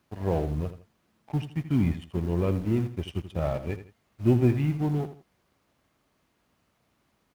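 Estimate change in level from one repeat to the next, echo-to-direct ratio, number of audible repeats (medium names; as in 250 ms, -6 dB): -10.5 dB, -11.5 dB, 2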